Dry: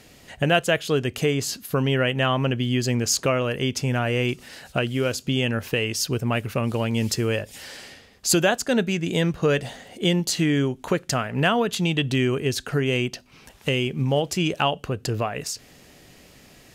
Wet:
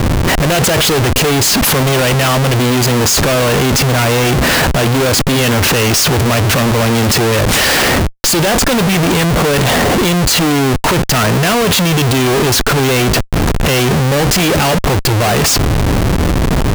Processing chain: sample leveller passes 5; Schmitt trigger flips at -35.5 dBFS; gain +1.5 dB

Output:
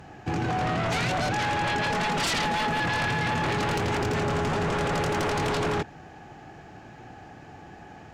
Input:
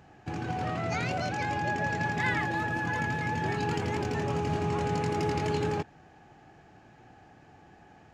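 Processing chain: 1.9–2.8 comb 4.5 ms, depth 79%; sine folder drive 14 dB, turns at -14.5 dBFS; gain -8.5 dB

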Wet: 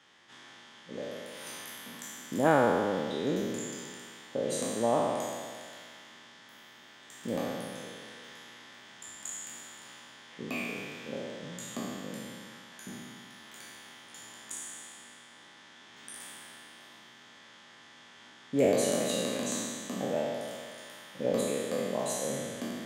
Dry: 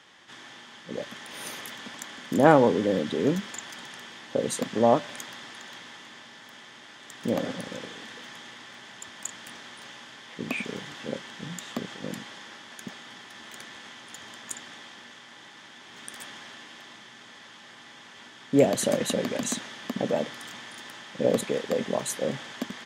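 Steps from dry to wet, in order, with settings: spectral trails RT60 1.80 s; gain -9 dB

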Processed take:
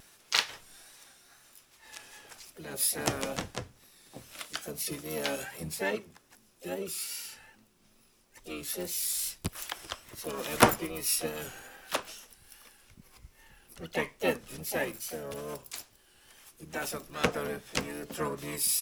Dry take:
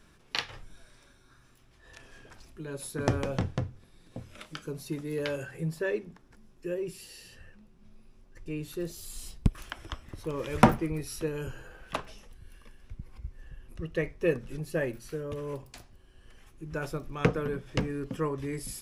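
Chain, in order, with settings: harmoniser -12 st -3 dB, +3 st -9 dB, +7 st -12 dB; RIAA curve recording; vibrato 2.4 Hz 54 cents; gain -1 dB

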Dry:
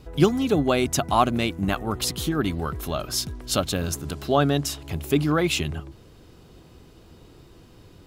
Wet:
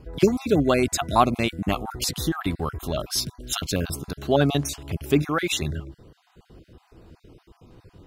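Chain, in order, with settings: random spectral dropouts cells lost 27%; 5.22–5.62 low shelf 300 Hz -10 dB; mismatched tape noise reduction decoder only; gain +1.5 dB

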